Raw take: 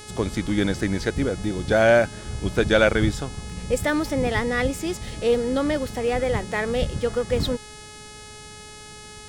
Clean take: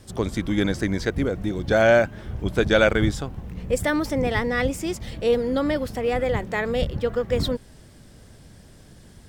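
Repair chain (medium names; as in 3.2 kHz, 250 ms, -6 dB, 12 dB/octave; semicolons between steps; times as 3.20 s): de-hum 423.8 Hz, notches 24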